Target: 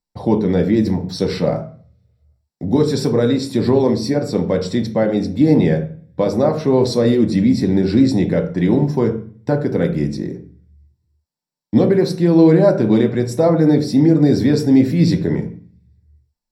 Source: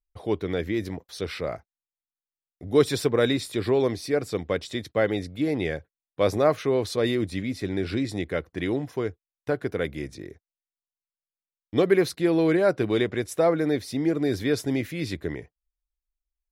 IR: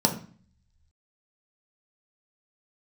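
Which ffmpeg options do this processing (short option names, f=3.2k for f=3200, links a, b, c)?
-filter_complex "[0:a]alimiter=limit=-18dB:level=0:latency=1:release=480[a];[1:a]atrim=start_sample=2205,asetrate=43218,aresample=44100[b];[a][b]afir=irnorm=-1:irlink=0,volume=-3dB"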